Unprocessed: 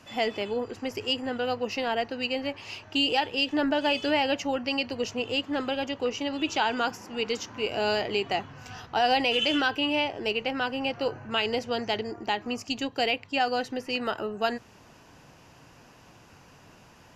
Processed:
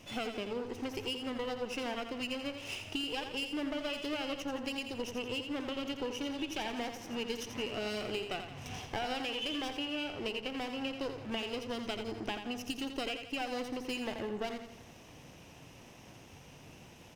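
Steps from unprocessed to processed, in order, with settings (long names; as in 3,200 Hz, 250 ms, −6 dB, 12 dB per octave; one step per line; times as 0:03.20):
lower of the sound and its delayed copy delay 0.35 ms
downward compressor 6 to 1, threshold −35 dBFS, peak gain reduction 14.5 dB
repeating echo 85 ms, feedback 48%, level −8 dB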